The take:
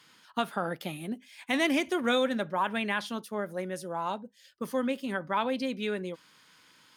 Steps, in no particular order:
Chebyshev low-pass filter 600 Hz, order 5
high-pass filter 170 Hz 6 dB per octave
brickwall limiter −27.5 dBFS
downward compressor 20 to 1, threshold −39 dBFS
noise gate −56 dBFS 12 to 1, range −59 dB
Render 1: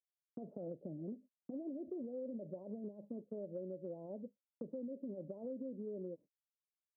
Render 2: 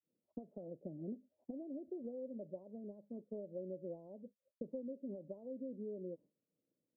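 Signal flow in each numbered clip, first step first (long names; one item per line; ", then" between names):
brickwall limiter, then Chebyshev low-pass filter, then downward compressor, then noise gate, then high-pass filter
high-pass filter, then downward compressor, then noise gate, then Chebyshev low-pass filter, then brickwall limiter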